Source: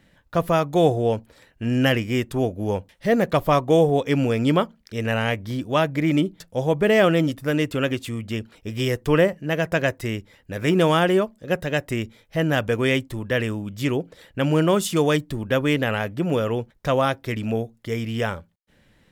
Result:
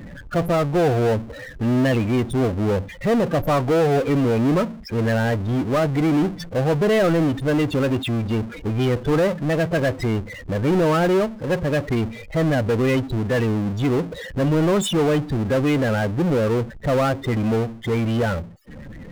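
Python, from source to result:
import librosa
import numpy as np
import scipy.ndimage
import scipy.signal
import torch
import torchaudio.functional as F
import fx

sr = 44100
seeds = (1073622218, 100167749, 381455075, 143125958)

y = 10.0 ** (-14.5 / 20.0) * np.tanh(x / 10.0 ** (-14.5 / 20.0))
y = fx.spec_topn(y, sr, count=16)
y = fx.power_curve(y, sr, exponent=0.5)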